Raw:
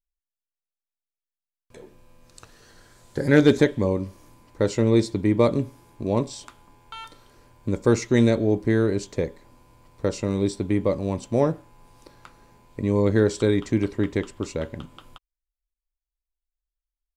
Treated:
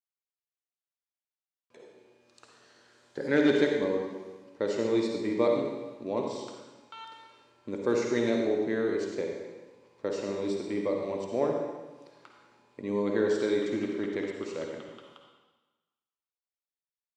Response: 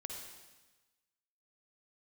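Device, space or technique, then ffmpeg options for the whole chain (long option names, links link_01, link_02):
supermarket ceiling speaker: -filter_complex "[0:a]highpass=280,lowpass=5500[link_01];[1:a]atrim=start_sample=2205[link_02];[link_01][link_02]afir=irnorm=-1:irlink=0,volume=-2.5dB"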